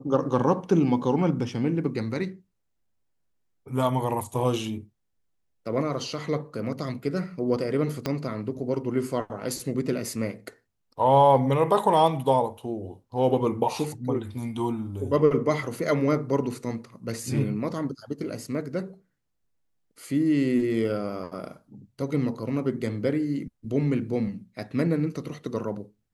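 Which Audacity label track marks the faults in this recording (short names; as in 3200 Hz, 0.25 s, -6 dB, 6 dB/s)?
8.060000	8.060000	pop -13 dBFS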